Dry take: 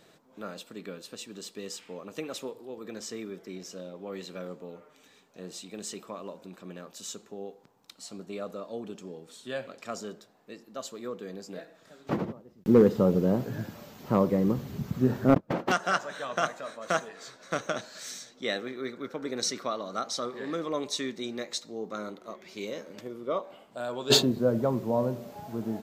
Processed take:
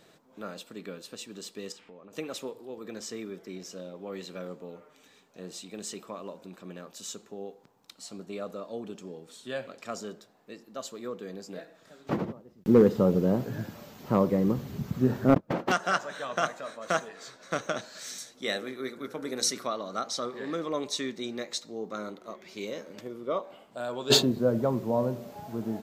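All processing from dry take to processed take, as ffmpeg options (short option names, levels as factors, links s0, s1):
-filter_complex "[0:a]asettb=1/sr,asplit=3[s0][s1][s2];[s0]atrim=end=1.724[s3];[s1]atrim=start=1.72:end=2.13,asetpts=PTS-STARTPTS,afade=t=in:d=0.004:c=qsin,afade=t=out:st=0.406:d=0.004:c=qsin,lowpass=f=2000:p=1,acompressor=threshold=0.00447:ratio=4:attack=3.2:release=140:knee=1:detection=peak[s4];[s2]atrim=start=2.126[s5];[s3][s4]acrossfade=d=0.004:c1=hsin:c2=qsin[s6];[s6][s5]acrossfade=d=0.004:c1=qsin:c2=hsin,asettb=1/sr,asplit=3[s7][s8][s9];[s7]atrim=end=18.184[s10];[s8]atrim=start=18.18:end=19.67,asetpts=PTS-STARTPTS,afade=t=in:d=0.004:c=qsin,afade=t=out:st=1.486:d=0.004:c=qsin,equalizer=f=11000:w=1.3:g=14.5,bandreject=f=60:t=h:w=6,bandreject=f=120:t=h:w=6,bandreject=f=180:t=h:w=6,bandreject=f=240:t=h:w=6,bandreject=f=300:t=h:w=6,bandreject=f=360:t=h:w=6,bandreject=f=420:t=h:w=6,bandreject=f=480:t=h:w=6,bandreject=f=540:t=h:w=6,bandreject=f=600:t=h:w=6[s11];[s9]atrim=start=19.666[s12];[s10][s11]acrossfade=d=0.004:c1=hsin:c2=qsin[s13];[s13][s12]acrossfade=d=0.004:c1=qsin:c2=hsin"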